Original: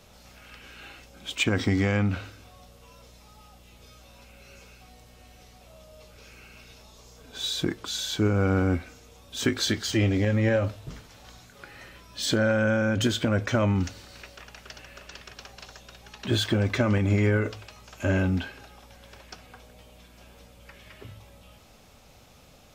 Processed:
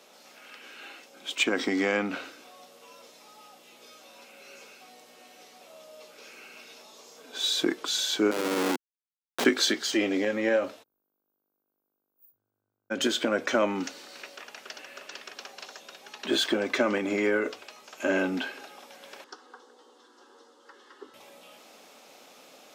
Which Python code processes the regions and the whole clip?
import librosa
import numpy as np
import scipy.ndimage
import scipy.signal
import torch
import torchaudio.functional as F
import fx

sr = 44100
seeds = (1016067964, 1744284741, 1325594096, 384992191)

y = fx.chain(x, sr, fx.highpass(hz=230.0, slope=24),
    fx.schmitt(flips_db=-26.5), at=(8.31, 9.45))
y = fx.cheby2_bandstop(y, sr, low_hz=230.0, high_hz=6400.0, order=4, stop_db=70, at=(10.82, 12.9), fade=0.02)
y = fx.dmg_buzz(y, sr, base_hz=50.0, harmonics=32, level_db=-74.0, tilt_db=-7, odd_only=False, at=(10.82, 12.9), fade=0.02)
y = fx.chain(y, sr, fx.highpass(hz=200.0, slope=12),
    fx.air_absorb(metres=90.0),
    fx.fixed_phaser(hz=640.0, stages=6), at=(19.24, 21.14))
y = scipy.signal.sosfilt(scipy.signal.butter(4, 270.0, 'highpass', fs=sr, output='sos'), y)
y = fx.rider(y, sr, range_db=10, speed_s=0.5)
y = fx.high_shelf(y, sr, hz=12000.0, db=-3.0)
y = y * librosa.db_to_amplitude(3.0)